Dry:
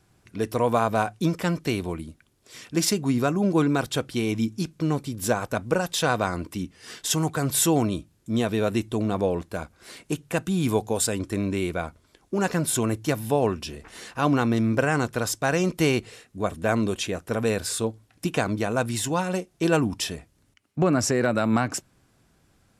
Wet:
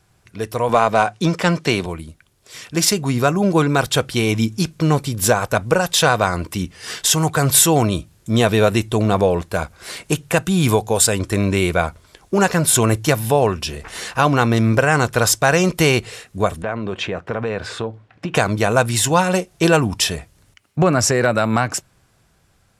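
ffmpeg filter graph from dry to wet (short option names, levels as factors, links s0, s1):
-filter_complex "[0:a]asettb=1/sr,asplit=3[s0][s1][s2];[s0]atrim=end=0.694[s3];[s1]atrim=start=0.69:end=1.86,asetpts=PTS-STARTPTS,afade=t=in:d=0.004:c=qsin,afade=t=out:st=1.166:d=0.004:c=qsin,highpass=140,lowpass=7800,acontrast=64[s4];[s2]atrim=start=1.856[s5];[s3][s4]acrossfade=d=0.004:c1=hsin:c2=qsin[s6];[s6][s5]acrossfade=d=0.004:c1=qsin:c2=hsin,asettb=1/sr,asplit=3[s7][s8][s9];[s7]atrim=end=16.624[s10];[s8]atrim=start=16.62:end=18.35,asetpts=PTS-STARTPTS,afade=t=in:d=0.004:c=qsin,afade=t=out:st=1.726:d=0.004:c=qsin,highpass=110,lowpass=2300,acompressor=threshold=0.0355:ratio=4:attack=3.2:release=140:knee=1:detection=peak[s11];[s9]atrim=start=18.346[s12];[s10][s11]acrossfade=d=0.004:c1=hsin:c2=qsin[s13];[s13][s12]acrossfade=d=0.004:c1=qsin:c2=hsin,dynaudnorm=f=510:g=9:m=3.76,alimiter=limit=0.501:level=0:latency=1:release=470,equalizer=f=270:w=1.5:g=-8,volume=1.68"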